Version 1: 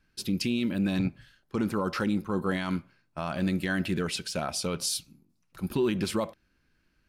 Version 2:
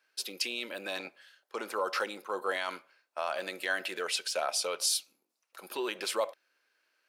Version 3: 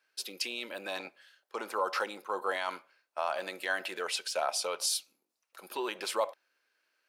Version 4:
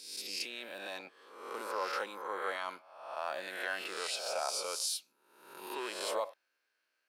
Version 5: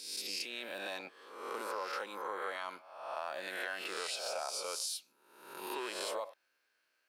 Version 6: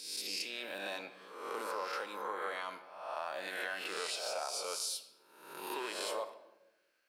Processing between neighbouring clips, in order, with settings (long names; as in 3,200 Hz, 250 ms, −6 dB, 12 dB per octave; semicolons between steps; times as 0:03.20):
Chebyshev high-pass filter 510 Hz, order 3; level +1.5 dB
dynamic equaliser 890 Hz, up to +6 dB, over −49 dBFS, Q 1.7; level −2 dB
peak hold with a rise ahead of every peak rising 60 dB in 0.89 s; level −7 dB
downward compressor 4 to 1, threshold −39 dBFS, peak gain reduction 8.5 dB; level +3 dB
rectangular room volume 480 cubic metres, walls mixed, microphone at 0.45 metres